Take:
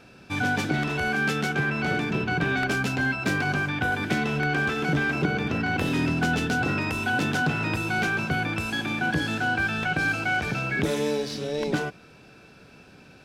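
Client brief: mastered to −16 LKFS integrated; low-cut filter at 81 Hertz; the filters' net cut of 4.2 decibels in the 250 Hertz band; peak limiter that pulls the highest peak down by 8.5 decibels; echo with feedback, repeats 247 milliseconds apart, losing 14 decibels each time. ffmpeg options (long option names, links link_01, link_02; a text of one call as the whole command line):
ffmpeg -i in.wav -af "highpass=81,equalizer=frequency=250:width_type=o:gain=-5.5,alimiter=limit=-19.5dB:level=0:latency=1,aecho=1:1:247|494:0.2|0.0399,volume=12dB" out.wav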